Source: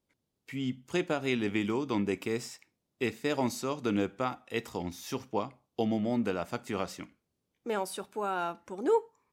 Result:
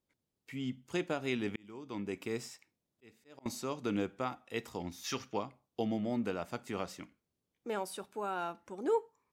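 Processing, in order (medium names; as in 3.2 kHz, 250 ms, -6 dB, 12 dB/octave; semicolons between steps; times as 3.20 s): 0.95–3.46 s: slow attack 793 ms; 5.04–5.37 s: time-frequency box 1.1–7.1 kHz +9 dB; trim -4.5 dB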